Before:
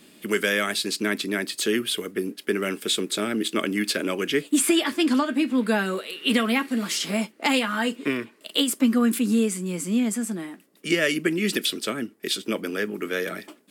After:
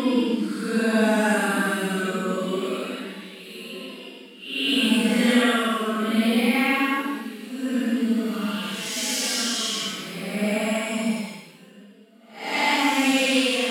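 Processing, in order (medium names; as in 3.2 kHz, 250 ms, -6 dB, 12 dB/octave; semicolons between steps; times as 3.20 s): two-band feedback delay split 450 Hz, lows 204 ms, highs 585 ms, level -11 dB; expander -26 dBFS; Paulstretch 6.7×, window 0.10 s, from 5.57 s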